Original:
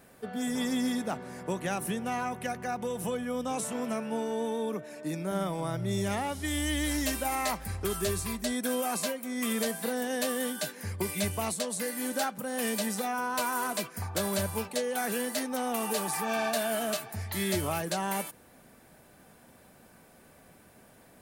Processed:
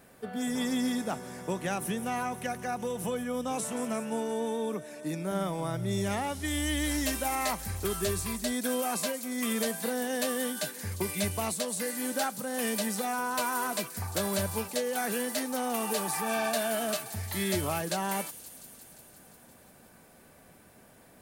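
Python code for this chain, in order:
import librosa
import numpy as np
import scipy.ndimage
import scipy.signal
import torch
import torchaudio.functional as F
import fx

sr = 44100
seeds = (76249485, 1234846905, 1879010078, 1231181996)

y = fx.echo_wet_highpass(x, sr, ms=175, feedback_pct=75, hz=5500.0, wet_db=-9)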